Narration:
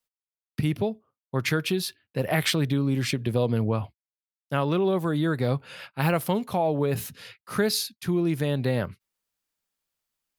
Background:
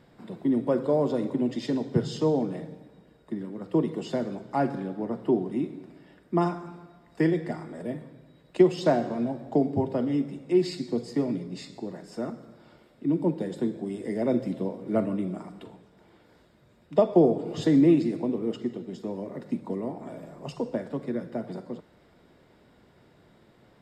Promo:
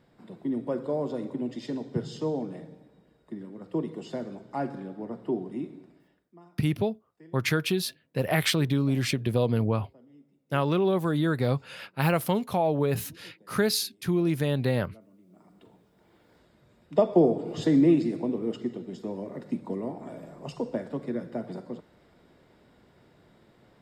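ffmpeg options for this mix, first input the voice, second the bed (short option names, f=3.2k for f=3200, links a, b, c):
-filter_complex "[0:a]adelay=6000,volume=-0.5dB[a];[1:a]volume=22.5dB,afade=t=out:st=5.76:d=0.57:silence=0.0668344,afade=t=in:st=15.27:d=1.27:silence=0.0398107[b];[a][b]amix=inputs=2:normalize=0"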